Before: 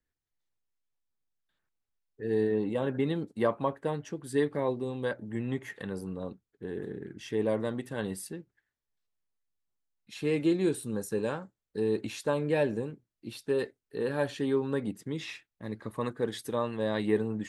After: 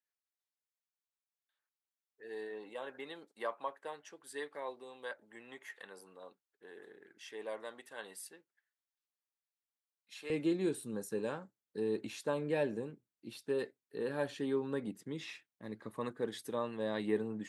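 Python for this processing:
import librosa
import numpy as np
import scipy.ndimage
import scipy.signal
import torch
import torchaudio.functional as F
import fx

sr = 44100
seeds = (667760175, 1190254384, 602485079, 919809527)

y = fx.highpass(x, sr, hz=fx.steps((0.0, 720.0), (10.3, 150.0)), slope=12)
y = y * 10.0 ** (-6.0 / 20.0)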